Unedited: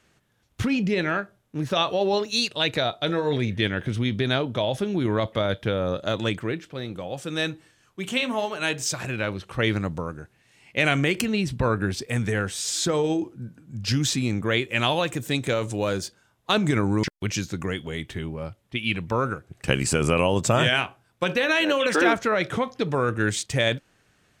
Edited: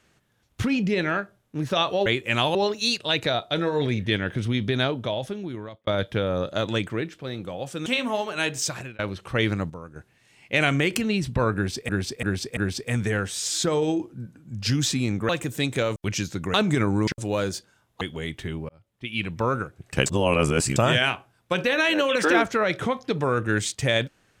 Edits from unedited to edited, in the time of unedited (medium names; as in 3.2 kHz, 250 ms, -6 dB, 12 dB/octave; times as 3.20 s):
4.34–5.38 s: fade out
7.37–8.10 s: delete
8.94–9.23 s: fade out
9.94–10.20 s: gain -8.5 dB
11.79–12.13 s: loop, 4 plays
14.51–15.00 s: move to 2.06 s
15.67–16.50 s: swap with 17.14–17.72 s
18.40–19.06 s: fade in
19.77–20.47 s: reverse